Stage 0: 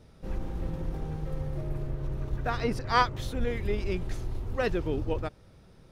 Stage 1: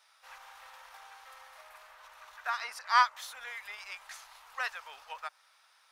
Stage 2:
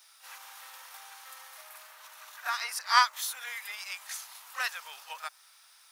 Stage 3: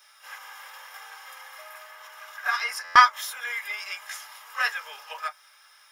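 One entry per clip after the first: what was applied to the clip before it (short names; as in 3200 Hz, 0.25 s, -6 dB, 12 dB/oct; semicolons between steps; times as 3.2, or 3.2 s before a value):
inverse Chebyshev high-pass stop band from 370 Hz, stop band 50 dB; dynamic EQ 3200 Hz, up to -5 dB, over -51 dBFS, Q 1.1; gain +3 dB
RIAA curve recording; reverse echo 32 ms -12 dB
reverb, pre-delay 3 ms, DRR 1 dB; stuck buffer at 2.84, samples 512, times 9; gain -2 dB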